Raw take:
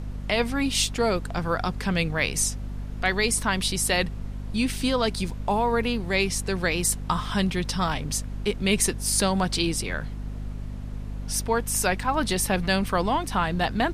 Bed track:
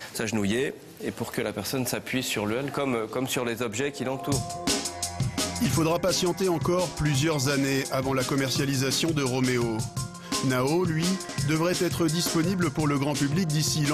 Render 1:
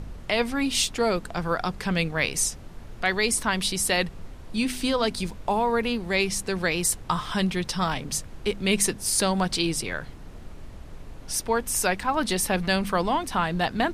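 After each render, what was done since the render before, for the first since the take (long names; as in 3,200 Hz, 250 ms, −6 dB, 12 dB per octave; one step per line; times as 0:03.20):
hum removal 50 Hz, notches 5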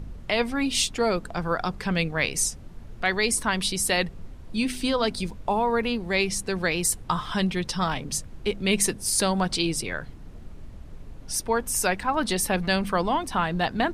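broadband denoise 6 dB, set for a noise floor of −42 dBFS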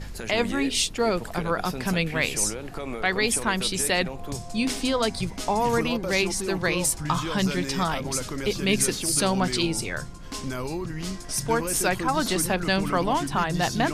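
mix in bed track −7 dB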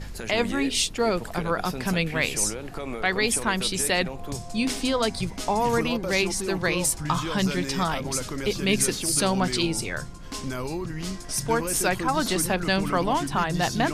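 no processing that can be heard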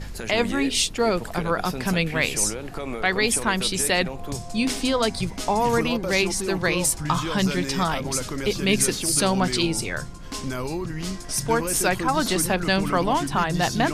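level +2 dB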